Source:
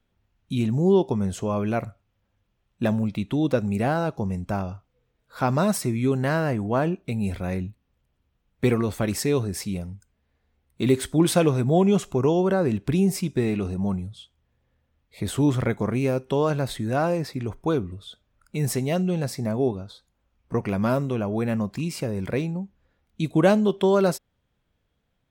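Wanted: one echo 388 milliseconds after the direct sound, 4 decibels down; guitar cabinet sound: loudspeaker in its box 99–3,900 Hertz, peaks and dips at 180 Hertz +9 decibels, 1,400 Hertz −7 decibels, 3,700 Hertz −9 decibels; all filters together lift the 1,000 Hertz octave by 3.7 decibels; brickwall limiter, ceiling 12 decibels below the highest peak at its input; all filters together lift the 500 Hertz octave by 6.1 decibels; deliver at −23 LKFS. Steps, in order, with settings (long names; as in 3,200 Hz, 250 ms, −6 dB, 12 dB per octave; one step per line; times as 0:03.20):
parametric band 500 Hz +7 dB
parametric band 1,000 Hz +3 dB
brickwall limiter −13.5 dBFS
loudspeaker in its box 99–3,900 Hz, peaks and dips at 180 Hz +9 dB, 1,400 Hz −7 dB, 3,700 Hz −9 dB
single-tap delay 388 ms −4 dB
level −1.5 dB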